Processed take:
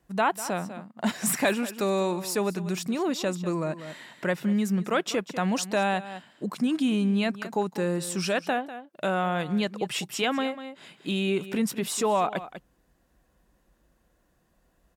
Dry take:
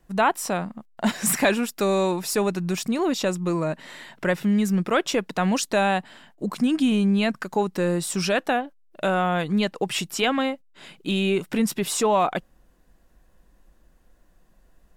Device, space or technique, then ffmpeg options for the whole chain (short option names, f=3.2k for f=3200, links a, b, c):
ducked delay: -filter_complex "[0:a]asplit=3[a][b][c];[b]adelay=196,volume=-8.5dB[d];[c]apad=whole_len=668474[e];[d][e]sidechaincompress=threshold=-30dB:ratio=3:attack=9.1:release=308[f];[a][f]amix=inputs=2:normalize=0,highpass=52,volume=-4dB"